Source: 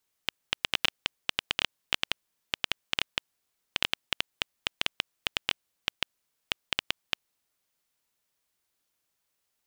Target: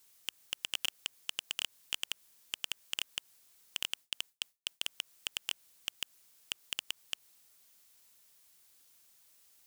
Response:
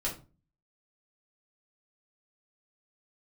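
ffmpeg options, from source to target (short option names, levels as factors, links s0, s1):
-filter_complex "[0:a]asplit=3[s0][s1][s2];[s0]afade=t=out:st=3.86:d=0.02[s3];[s1]agate=range=0.0224:threshold=0.0112:ratio=3:detection=peak,afade=t=in:st=3.86:d=0.02,afade=t=out:st=4.89:d=0.02[s4];[s2]afade=t=in:st=4.89:d=0.02[s5];[s3][s4][s5]amix=inputs=3:normalize=0,highshelf=f=3500:g=10,acrossover=split=2100[s6][s7];[s7]alimiter=limit=0.2:level=0:latency=1:release=110[s8];[s6][s8]amix=inputs=2:normalize=0,asoftclip=type=tanh:threshold=0.0422,volume=2.11"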